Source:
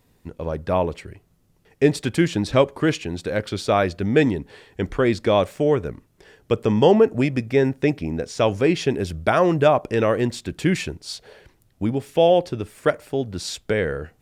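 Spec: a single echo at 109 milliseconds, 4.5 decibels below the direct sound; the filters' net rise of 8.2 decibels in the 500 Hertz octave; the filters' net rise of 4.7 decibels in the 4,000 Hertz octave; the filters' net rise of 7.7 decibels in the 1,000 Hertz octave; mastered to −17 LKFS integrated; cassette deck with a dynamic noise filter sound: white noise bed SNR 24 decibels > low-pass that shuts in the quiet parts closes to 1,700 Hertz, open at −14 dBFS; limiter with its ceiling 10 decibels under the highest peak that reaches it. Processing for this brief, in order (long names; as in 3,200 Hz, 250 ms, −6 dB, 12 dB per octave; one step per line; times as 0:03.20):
parametric band 500 Hz +8 dB
parametric band 1,000 Hz +7 dB
parametric band 4,000 Hz +5.5 dB
brickwall limiter −5.5 dBFS
single-tap delay 109 ms −4.5 dB
white noise bed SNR 24 dB
low-pass that shuts in the quiet parts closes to 1,700 Hz, open at −14 dBFS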